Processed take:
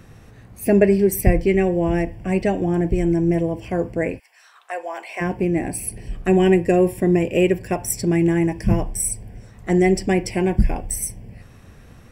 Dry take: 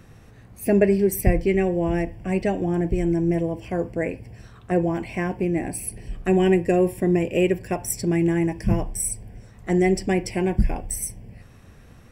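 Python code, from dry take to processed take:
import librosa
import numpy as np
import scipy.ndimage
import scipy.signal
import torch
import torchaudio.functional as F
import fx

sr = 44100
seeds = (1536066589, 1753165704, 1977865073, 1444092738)

y = fx.highpass(x, sr, hz=fx.line((4.18, 1100.0), (5.2, 480.0)), slope=24, at=(4.18, 5.2), fade=0.02)
y = y * librosa.db_to_amplitude(3.0)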